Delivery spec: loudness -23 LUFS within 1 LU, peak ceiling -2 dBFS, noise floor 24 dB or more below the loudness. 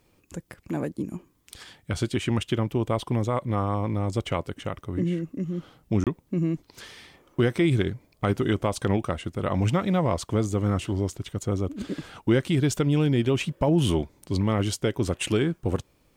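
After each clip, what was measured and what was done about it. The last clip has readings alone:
dropouts 1; longest dropout 27 ms; loudness -26.5 LUFS; peak -11.5 dBFS; loudness target -23.0 LUFS
-> interpolate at 6.04, 27 ms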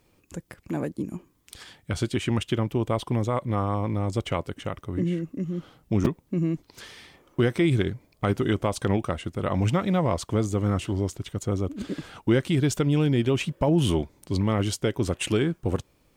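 dropouts 0; loudness -26.5 LUFS; peak -7.0 dBFS; loudness target -23.0 LUFS
-> gain +3.5 dB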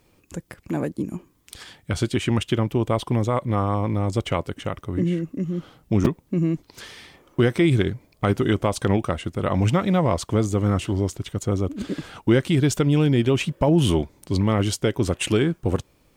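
loudness -23.0 LUFS; peak -3.5 dBFS; noise floor -62 dBFS

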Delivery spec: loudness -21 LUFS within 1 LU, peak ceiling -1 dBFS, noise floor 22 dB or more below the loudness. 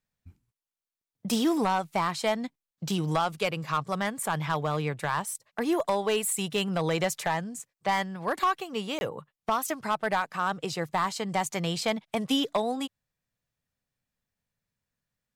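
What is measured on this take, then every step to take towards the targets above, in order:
clipped 0.5%; flat tops at -18.5 dBFS; dropouts 1; longest dropout 21 ms; loudness -29.0 LUFS; peak -18.5 dBFS; loudness target -21.0 LUFS
-> clip repair -18.5 dBFS; interpolate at 8.99, 21 ms; gain +8 dB

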